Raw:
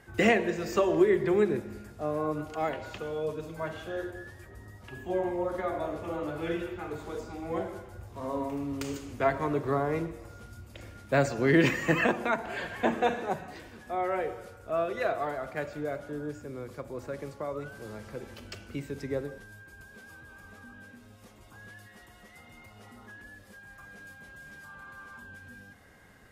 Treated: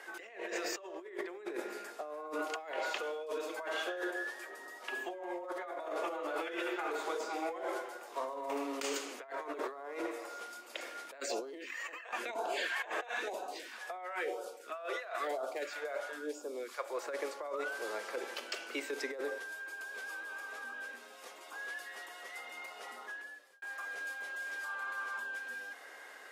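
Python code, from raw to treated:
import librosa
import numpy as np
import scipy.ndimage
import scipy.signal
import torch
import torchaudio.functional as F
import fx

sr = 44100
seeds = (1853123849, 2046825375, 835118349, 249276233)

y = fx.phaser_stages(x, sr, stages=2, low_hz=180.0, high_hz=2000.0, hz=1.0, feedback_pct=5, at=(11.2, 17.06))
y = fx.edit(y, sr, fx.fade_out_span(start_s=22.92, length_s=0.7), tone=tone)
y = scipy.signal.sosfilt(scipy.signal.bessel(8, 590.0, 'highpass', norm='mag', fs=sr, output='sos'), y)
y = fx.over_compress(y, sr, threshold_db=-43.0, ratio=-1.0)
y = fx.high_shelf(y, sr, hz=11000.0, db=-7.5)
y = y * librosa.db_to_amplitude(3.0)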